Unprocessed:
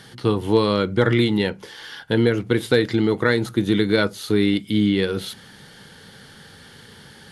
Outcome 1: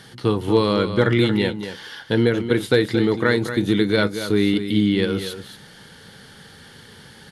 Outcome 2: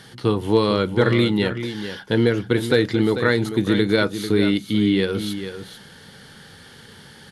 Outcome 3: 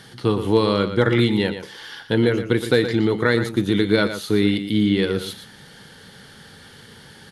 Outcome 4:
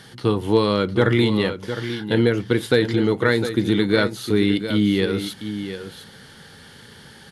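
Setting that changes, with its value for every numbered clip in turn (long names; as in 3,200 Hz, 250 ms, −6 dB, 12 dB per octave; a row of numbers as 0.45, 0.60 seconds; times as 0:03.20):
single-tap delay, delay time: 231, 444, 118, 708 milliseconds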